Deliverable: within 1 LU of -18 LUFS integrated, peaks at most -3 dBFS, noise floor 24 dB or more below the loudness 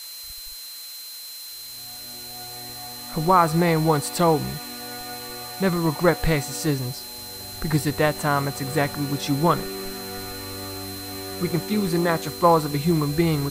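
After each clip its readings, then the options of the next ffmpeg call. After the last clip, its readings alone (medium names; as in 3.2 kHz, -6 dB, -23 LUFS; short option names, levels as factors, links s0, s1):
steady tone 4.1 kHz; tone level -38 dBFS; noise floor -38 dBFS; noise floor target -49 dBFS; loudness -24.5 LUFS; peak level -4.0 dBFS; loudness target -18.0 LUFS
-> -af "bandreject=f=4100:w=30"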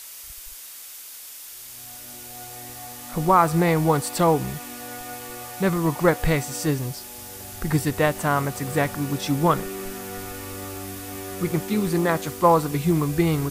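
steady tone not found; noise floor -40 dBFS; noise floor target -48 dBFS
-> -af "afftdn=nr=8:nf=-40"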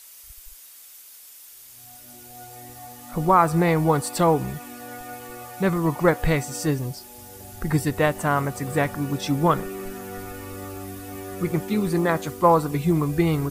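noise floor -46 dBFS; noise floor target -47 dBFS
-> -af "afftdn=nr=6:nf=-46"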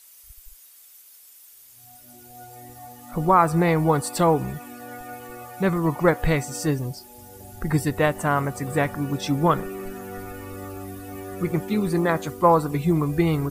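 noise floor -50 dBFS; loudness -23.0 LUFS; peak level -4.5 dBFS; loudness target -18.0 LUFS
-> -af "volume=1.78,alimiter=limit=0.708:level=0:latency=1"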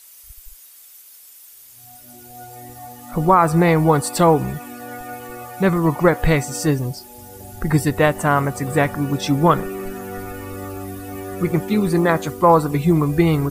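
loudness -18.0 LUFS; peak level -3.0 dBFS; noise floor -45 dBFS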